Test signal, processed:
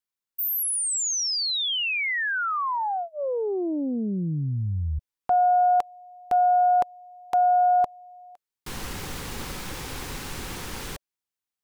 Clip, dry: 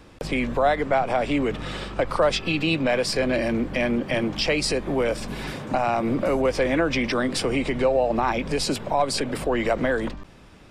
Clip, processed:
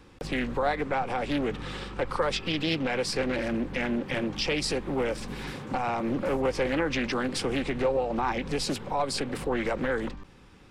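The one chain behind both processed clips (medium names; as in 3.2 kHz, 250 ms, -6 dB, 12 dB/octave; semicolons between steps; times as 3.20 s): Butterworth band-stop 640 Hz, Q 5; loudspeaker Doppler distortion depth 0.41 ms; trim -4.5 dB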